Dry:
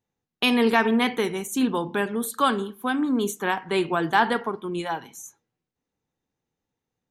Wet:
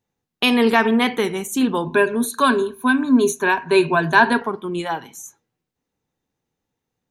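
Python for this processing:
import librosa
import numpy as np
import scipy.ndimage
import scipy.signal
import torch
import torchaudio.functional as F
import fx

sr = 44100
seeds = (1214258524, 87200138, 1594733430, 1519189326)

y = fx.ripple_eq(x, sr, per_octave=1.5, db=14, at=(1.85, 4.42))
y = y * librosa.db_to_amplitude(4.0)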